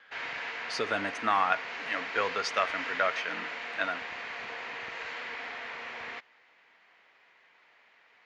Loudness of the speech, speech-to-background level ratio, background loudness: −31.5 LKFS, 5.5 dB, −37.0 LKFS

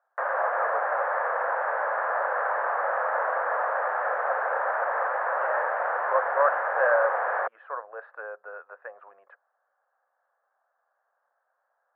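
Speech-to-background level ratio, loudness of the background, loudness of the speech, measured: −5.0 dB, −27.0 LKFS, −32.0 LKFS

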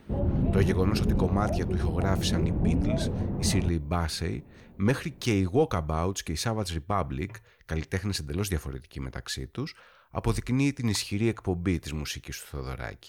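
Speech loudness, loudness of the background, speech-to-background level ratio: −30.5 LKFS, −29.0 LKFS, −1.5 dB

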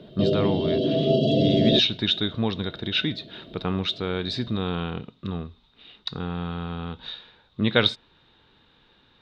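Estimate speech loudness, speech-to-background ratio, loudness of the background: −27.0 LKFS, −4.5 dB, −22.5 LKFS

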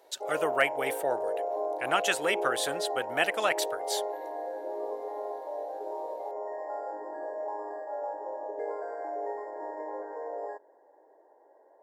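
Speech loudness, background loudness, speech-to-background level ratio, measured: −30.0 LKFS, −35.5 LKFS, 5.5 dB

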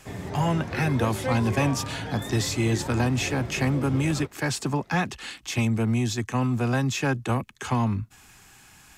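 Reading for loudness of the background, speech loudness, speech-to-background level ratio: −34.0 LKFS, −26.5 LKFS, 7.5 dB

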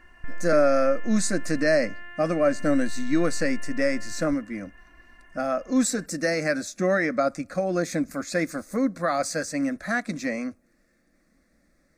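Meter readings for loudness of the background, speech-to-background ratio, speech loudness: −42.5 LKFS, 17.0 dB, −25.5 LKFS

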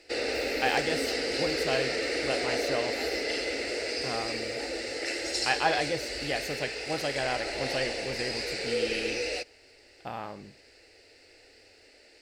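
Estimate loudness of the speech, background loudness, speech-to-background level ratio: −33.5 LKFS, −31.0 LKFS, −2.5 dB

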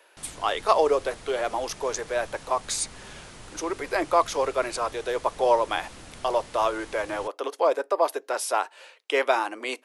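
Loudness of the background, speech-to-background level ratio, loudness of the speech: −45.0 LKFS, 18.5 dB, −26.5 LKFS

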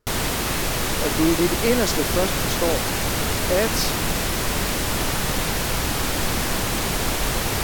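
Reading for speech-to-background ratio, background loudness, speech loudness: −1.5 dB, −23.0 LKFS, −24.5 LKFS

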